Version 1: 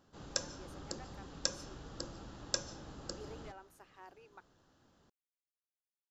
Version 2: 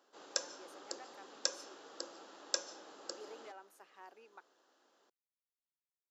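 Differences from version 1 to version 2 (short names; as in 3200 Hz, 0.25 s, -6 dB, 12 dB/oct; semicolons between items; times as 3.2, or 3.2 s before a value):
speech: remove brick-wall FIR high-pass 260 Hz; master: add HPF 360 Hz 24 dB/oct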